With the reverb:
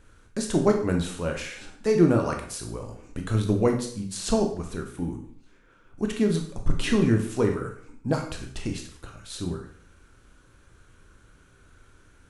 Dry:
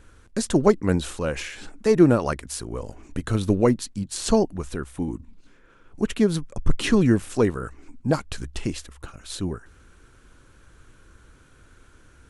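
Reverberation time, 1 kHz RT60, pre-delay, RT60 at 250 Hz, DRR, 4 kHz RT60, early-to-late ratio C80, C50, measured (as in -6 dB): 0.60 s, 0.55 s, 7 ms, 0.55 s, 2.5 dB, 0.55 s, 11.5 dB, 7.0 dB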